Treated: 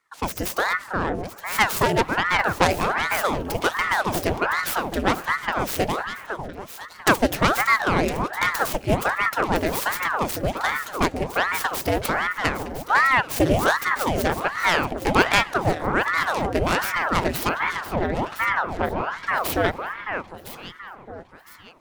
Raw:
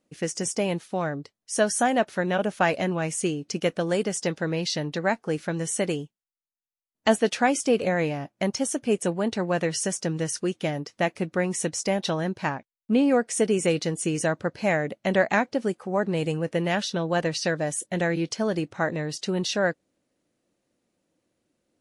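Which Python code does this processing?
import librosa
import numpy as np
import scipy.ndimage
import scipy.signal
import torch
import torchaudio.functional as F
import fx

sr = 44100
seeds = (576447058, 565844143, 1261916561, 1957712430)

y = fx.tracing_dist(x, sr, depth_ms=0.45)
y = fx.spacing_loss(y, sr, db_at_10k=30, at=(17.49, 19.27))
y = fx.echo_alternate(y, sr, ms=505, hz=1300.0, feedback_pct=61, wet_db=-7)
y = fx.rev_fdn(y, sr, rt60_s=3.4, lf_ratio=1.0, hf_ratio=0.35, size_ms=14.0, drr_db=19.0)
y = fx.ring_lfo(y, sr, carrier_hz=860.0, swing_pct=90, hz=1.3)
y = y * librosa.db_to_amplitude(5.0)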